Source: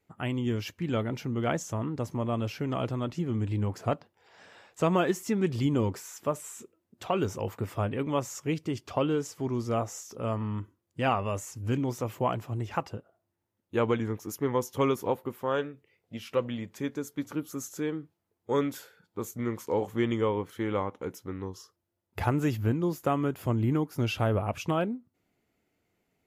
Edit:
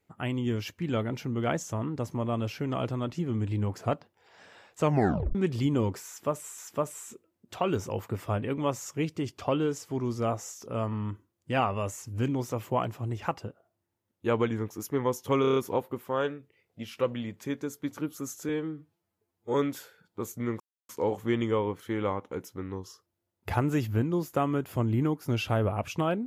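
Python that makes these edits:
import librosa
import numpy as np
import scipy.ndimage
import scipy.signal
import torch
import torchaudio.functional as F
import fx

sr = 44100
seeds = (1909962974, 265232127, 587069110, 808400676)

y = fx.edit(x, sr, fx.tape_stop(start_s=4.83, length_s=0.52),
    fx.repeat(start_s=6.07, length_s=0.51, count=2),
    fx.stutter(start_s=14.9, slice_s=0.03, count=6),
    fx.stretch_span(start_s=17.83, length_s=0.7, factor=1.5),
    fx.insert_silence(at_s=19.59, length_s=0.29), tone=tone)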